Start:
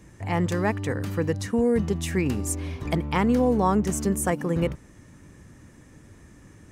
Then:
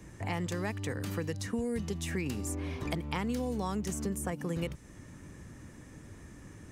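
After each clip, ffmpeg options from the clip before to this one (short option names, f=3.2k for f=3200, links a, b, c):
-filter_complex "[0:a]acrossover=split=170|2600[a][b][c];[a]acompressor=threshold=-39dB:ratio=4[d];[b]acompressor=threshold=-36dB:ratio=4[e];[c]acompressor=threshold=-41dB:ratio=4[f];[d][e][f]amix=inputs=3:normalize=0"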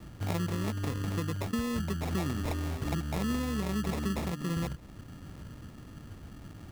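-af "equalizer=f=680:t=o:w=1.5:g=-12,acrusher=samples=29:mix=1:aa=0.000001,volume=4.5dB"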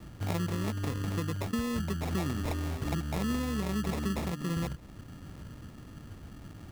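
-af anull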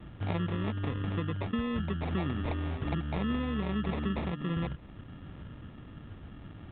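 -ar 8000 -c:a pcm_alaw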